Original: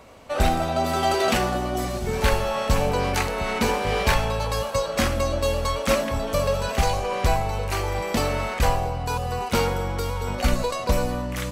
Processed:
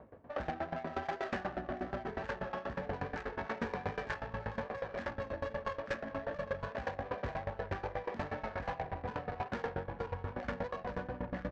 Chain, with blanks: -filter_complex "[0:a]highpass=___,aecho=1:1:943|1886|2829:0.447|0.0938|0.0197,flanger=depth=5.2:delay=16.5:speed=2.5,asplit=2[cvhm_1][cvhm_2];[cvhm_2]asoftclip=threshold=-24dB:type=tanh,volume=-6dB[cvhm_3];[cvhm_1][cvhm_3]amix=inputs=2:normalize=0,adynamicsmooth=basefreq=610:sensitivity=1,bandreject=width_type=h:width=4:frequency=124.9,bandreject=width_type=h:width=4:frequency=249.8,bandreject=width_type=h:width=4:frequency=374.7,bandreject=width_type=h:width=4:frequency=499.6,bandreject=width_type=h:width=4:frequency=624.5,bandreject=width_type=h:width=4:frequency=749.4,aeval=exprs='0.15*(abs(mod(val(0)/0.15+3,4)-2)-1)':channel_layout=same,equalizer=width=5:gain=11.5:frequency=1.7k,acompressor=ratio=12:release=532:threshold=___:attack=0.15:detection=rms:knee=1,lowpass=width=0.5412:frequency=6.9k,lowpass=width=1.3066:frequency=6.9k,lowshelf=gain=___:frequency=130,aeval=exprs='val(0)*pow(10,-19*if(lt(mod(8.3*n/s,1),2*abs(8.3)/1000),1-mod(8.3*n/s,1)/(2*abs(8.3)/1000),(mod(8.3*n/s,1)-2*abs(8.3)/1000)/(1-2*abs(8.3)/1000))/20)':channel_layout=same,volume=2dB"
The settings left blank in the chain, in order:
73, -27dB, -2.5